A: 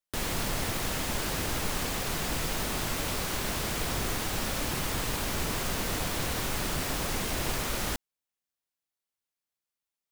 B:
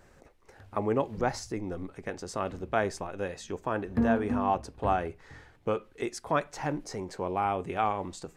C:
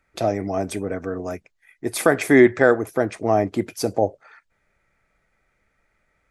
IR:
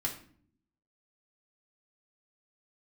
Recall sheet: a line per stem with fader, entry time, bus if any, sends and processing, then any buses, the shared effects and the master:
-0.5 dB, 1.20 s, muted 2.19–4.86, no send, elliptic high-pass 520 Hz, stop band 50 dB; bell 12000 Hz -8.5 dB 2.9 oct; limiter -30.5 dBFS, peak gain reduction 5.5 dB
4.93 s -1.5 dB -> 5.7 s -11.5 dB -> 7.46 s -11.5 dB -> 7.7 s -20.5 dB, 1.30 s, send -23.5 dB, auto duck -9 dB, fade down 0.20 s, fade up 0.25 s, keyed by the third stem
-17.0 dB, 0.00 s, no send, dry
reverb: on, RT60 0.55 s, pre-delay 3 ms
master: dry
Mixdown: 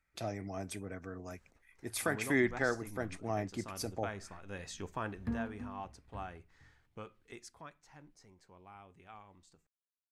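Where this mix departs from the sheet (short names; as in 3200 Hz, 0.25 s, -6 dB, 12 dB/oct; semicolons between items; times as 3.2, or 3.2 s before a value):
stem A: muted; stem C -17.0 dB -> -10.5 dB; master: extra bell 480 Hz -9 dB 2.2 oct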